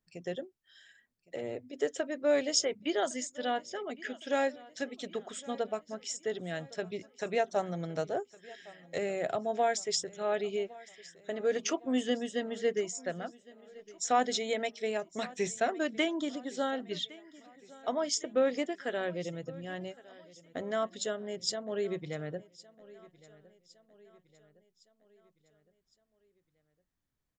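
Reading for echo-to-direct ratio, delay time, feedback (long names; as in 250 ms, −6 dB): −20.0 dB, 1,111 ms, 50%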